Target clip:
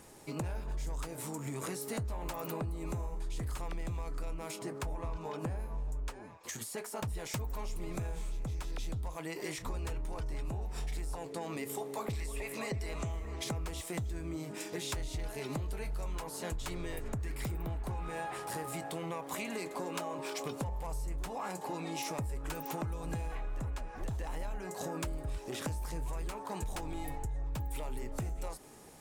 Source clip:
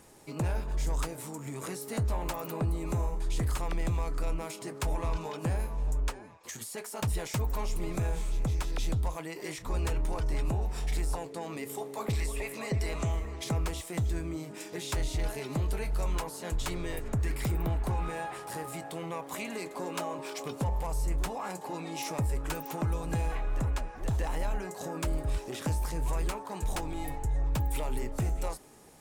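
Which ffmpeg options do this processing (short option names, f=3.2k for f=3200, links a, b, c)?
-filter_complex "[0:a]acompressor=threshold=-35dB:ratio=10,asplit=3[a][b][c];[a]afade=t=out:st=4.57:d=0.02[d];[b]adynamicequalizer=threshold=0.00112:dfrequency=2000:dqfactor=0.7:tfrequency=2000:tqfactor=0.7:attack=5:release=100:ratio=0.375:range=3:mode=cutabove:tftype=highshelf,afade=t=in:st=4.57:d=0.02,afade=t=out:st=7.15:d=0.02[e];[c]afade=t=in:st=7.15:d=0.02[f];[d][e][f]amix=inputs=3:normalize=0,volume=1dB"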